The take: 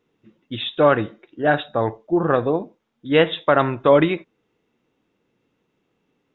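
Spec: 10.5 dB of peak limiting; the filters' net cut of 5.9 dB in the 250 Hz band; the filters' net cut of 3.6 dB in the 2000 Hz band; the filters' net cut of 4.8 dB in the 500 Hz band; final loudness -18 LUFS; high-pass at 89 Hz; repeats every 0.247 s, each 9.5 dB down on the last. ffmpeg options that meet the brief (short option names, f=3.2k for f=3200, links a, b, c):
-af "highpass=89,equalizer=f=250:t=o:g=-6.5,equalizer=f=500:t=o:g=-4,equalizer=f=2k:t=o:g=-4.5,alimiter=limit=-16dB:level=0:latency=1,aecho=1:1:247|494|741|988:0.335|0.111|0.0365|0.012,volume=11dB"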